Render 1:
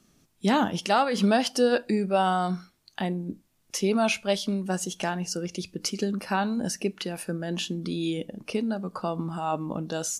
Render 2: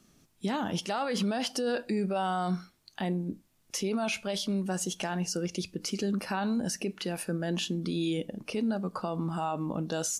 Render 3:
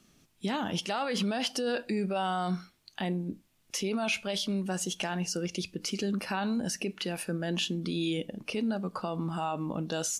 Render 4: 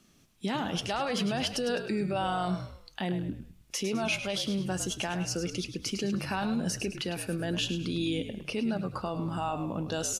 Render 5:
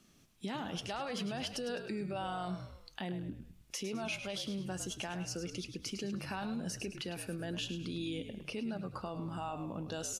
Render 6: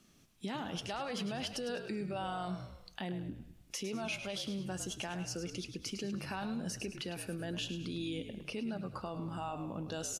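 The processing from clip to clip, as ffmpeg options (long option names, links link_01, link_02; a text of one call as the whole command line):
ffmpeg -i in.wav -af "alimiter=limit=-22.5dB:level=0:latency=1:release=32" out.wav
ffmpeg -i in.wav -af "equalizer=frequency=2800:width_type=o:width=1.2:gain=4.5,volume=-1dB" out.wav
ffmpeg -i in.wav -filter_complex "[0:a]asplit=5[link_01][link_02][link_03][link_04][link_05];[link_02]adelay=104,afreqshift=-56,volume=-10dB[link_06];[link_03]adelay=208,afreqshift=-112,volume=-17.7dB[link_07];[link_04]adelay=312,afreqshift=-168,volume=-25.5dB[link_08];[link_05]adelay=416,afreqshift=-224,volume=-33.2dB[link_09];[link_01][link_06][link_07][link_08][link_09]amix=inputs=5:normalize=0" out.wav
ffmpeg -i in.wav -af "acompressor=threshold=-43dB:ratio=1.5,volume=-2.5dB" out.wav
ffmpeg -i in.wav -af "aecho=1:1:189|378|567:0.075|0.0277|0.0103" out.wav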